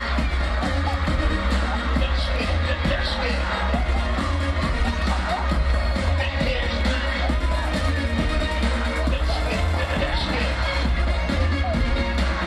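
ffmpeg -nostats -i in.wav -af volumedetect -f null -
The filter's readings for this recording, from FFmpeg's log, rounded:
mean_volume: -21.7 dB
max_volume: -9.6 dB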